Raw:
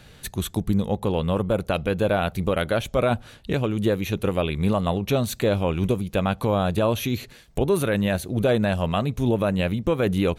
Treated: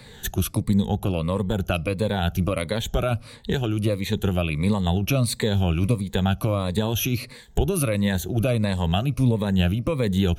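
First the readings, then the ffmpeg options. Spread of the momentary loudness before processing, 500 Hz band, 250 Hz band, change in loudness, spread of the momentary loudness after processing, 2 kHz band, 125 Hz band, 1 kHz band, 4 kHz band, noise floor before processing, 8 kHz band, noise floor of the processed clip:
5 LU, −4.0 dB, +0.5 dB, 0.0 dB, 4 LU, −1.0 dB, +3.0 dB, −3.0 dB, +2.5 dB, −49 dBFS, +4.5 dB, −45 dBFS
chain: -filter_complex "[0:a]afftfilt=real='re*pow(10,12/40*sin(2*PI*(0.97*log(max(b,1)*sr/1024/100)/log(2)-(-1.5)*(pts-256)/sr)))':imag='im*pow(10,12/40*sin(2*PI*(0.97*log(max(b,1)*sr/1024/100)/log(2)-(-1.5)*(pts-256)/sr)))':win_size=1024:overlap=0.75,acrossover=split=180|3000[link_01][link_02][link_03];[link_02]acompressor=threshold=-30dB:ratio=2.5[link_04];[link_01][link_04][link_03]amix=inputs=3:normalize=0,volume=2.5dB"

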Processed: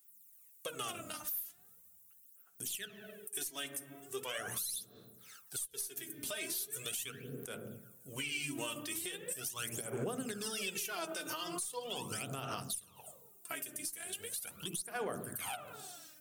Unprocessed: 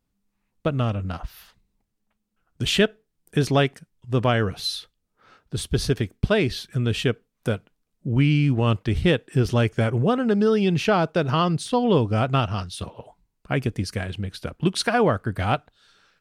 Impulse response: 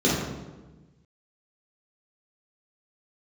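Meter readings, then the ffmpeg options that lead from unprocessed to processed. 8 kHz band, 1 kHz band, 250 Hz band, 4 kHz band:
+0.5 dB, −18.5 dB, −23.5 dB, −13.0 dB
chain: -filter_complex "[0:a]aexciter=amount=6.6:drive=3.4:freq=6400,aderivative,asplit=2[link_01][link_02];[1:a]atrim=start_sample=2205,lowpass=2300[link_03];[link_02][link_03]afir=irnorm=-1:irlink=0,volume=-24.5dB[link_04];[link_01][link_04]amix=inputs=2:normalize=0,aeval=exprs='0.668*(cos(1*acos(clip(val(0)/0.668,-1,1)))-cos(1*PI/2))+0.0211*(cos(4*acos(clip(val(0)/0.668,-1,1)))-cos(4*PI/2))':channel_layout=same,acompressor=threshold=-39dB:ratio=6,equalizer=frequency=7200:width=1.5:gain=-2.5,aphaser=in_gain=1:out_gain=1:delay=3.3:decay=0.72:speed=0.4:type=sinusoidal,alimiter=level_in=9.5dB:limit=-24dB:level=0:latency=1:release=209,volume=-9.5dB,volume=5.5dB"

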